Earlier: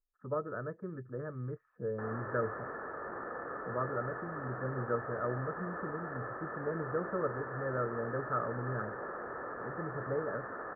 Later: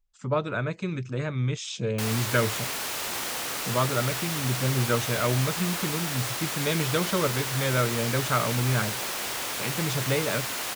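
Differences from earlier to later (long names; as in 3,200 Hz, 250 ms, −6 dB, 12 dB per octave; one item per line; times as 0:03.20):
speech +5.5 dB
master: remove Chebyshev low-pass with heavy ripple 1,800 Hz, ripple 9 dB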